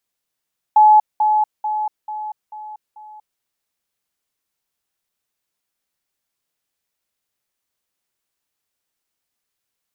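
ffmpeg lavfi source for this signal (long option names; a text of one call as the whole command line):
ffmpeg -f lavfi -i "aevalsrc='pow(10,(-6.5-6*floor(t/0.44))/20)*sin(2*PI*853*t)*clip(min(mod(t,0.44),0.24-mod(t,0.44))/0.005,0,1)':duration=2.64:sample_rate=44100" out.wav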